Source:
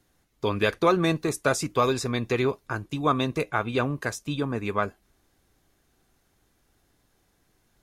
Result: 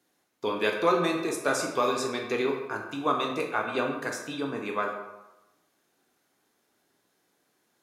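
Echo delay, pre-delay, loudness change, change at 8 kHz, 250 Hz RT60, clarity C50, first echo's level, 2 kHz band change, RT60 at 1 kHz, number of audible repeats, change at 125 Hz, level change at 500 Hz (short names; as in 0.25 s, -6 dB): none, 17 ms, -2.5 dB, -2.0 dB, 0.90 s, 5.5 dB, none, -1.0 dB, 1.0 s, none, -13.0 dB, -2.0 dB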